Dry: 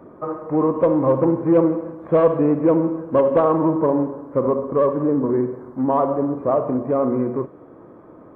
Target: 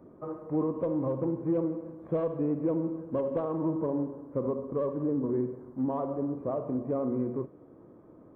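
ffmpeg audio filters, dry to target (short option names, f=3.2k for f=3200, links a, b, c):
-af "alimiter=limit=-11dB:level=0:latency=1:release=364,equalizer=f=1.5k:w=0.4:g=-9,volume=-6.5dB"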